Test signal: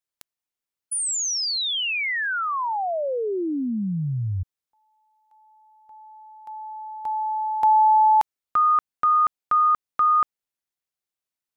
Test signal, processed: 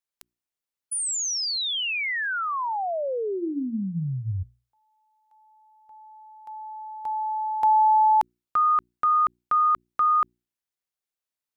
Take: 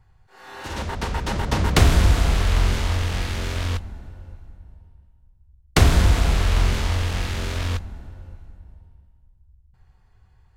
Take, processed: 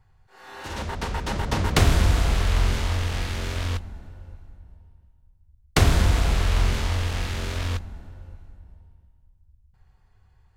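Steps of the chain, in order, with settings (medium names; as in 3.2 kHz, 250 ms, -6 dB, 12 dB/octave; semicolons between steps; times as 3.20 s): hum notches 60/120/180/240/300/360 Hz; trim -2 dB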